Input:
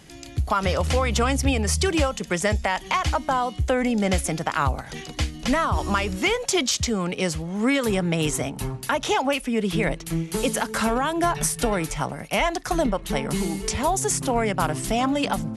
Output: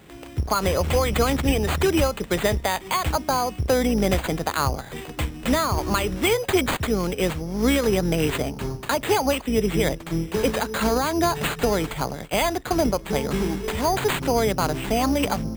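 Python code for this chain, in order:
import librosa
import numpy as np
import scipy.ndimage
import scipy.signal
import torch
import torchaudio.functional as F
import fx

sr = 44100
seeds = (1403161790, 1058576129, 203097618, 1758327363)

y = fx.octave_divider(x, sr, octaves=2, level_db=-3.0)
y = scipy.signal.sosfilt(scipy.signal.butter(2, 44.0, 'highpass', fs=sr, output='sos'), y)
y = fx.peak_eq(y, sr, hz=420.0, db=5.0, octaves=0.95)
y = np.repeat(y[::8], 8)[:len(y)]
y = y * librosa.db_to_amplitude(-1.0)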